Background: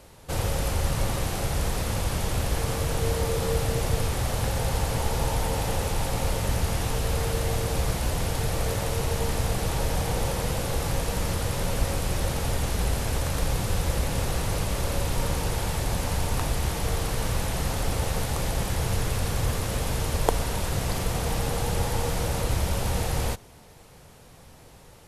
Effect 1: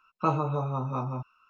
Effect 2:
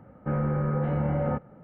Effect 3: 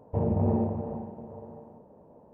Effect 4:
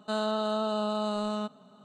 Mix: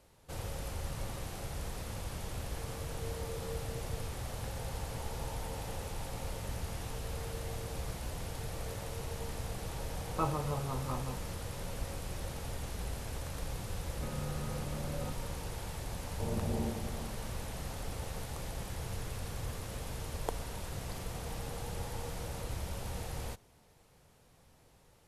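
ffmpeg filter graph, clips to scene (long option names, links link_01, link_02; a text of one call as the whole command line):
ffmpeg -i bed.wav -i cue0.wav -i cue1.wav -i cue2.wav -filter_complex "[0:a]volume=-13.5dB[link_01];[1:a]atrim=end=1.49,asetpts=PTS-STARTPTS,volume=-7.5dB,afade=type=in:duration=0.004:curve=hsin,afade=type=out:start_time=1.486:duration=0.004:curve=hsin,adelay=9950[link_02];[2:a]atrim=end=1.63,asetpts=PTS-STARTPTS,volume=-14.5dB,afade=type=in:duration=0.004:curve=hsin,afade=type=out:start_time=1.626:duration=0.004:curve=hsin,adelay=13750[link_03];[3:a]atrim=end=2.33,asetpts=PTS-STARTPTS,volume=-10dB,afade=type=in:duration=0.004:curve=hsin,afade=type=out:start_time=2.326:duration=0.004:curve=hsin,adelay=16060[link_04];[link_01][link_02][link_03][link_04]amix=inputs=4:normalize=0" out.wav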